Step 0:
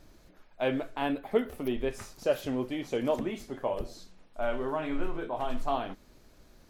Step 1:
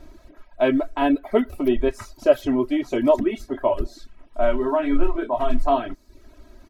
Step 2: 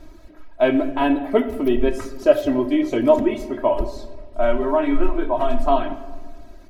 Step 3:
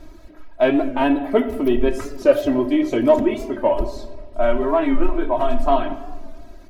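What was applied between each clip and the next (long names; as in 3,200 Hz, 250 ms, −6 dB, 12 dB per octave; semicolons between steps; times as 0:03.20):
high-shelf EQ 2,600 Hz −8.5 dB; comb filter 3.1 ms, depth 93%; reverb reduction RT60 0.55 s; level +8 dB
rectangular room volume 1,200 cubic metres, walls mixed, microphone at 0.61 metres; level +1.5 dB
in parallel at −9.5 dB: soft clipping −15 dBFS, distortion −11 dB; on the sum: wow of a warped record 45 rpm, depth 100 cents; level −1 dB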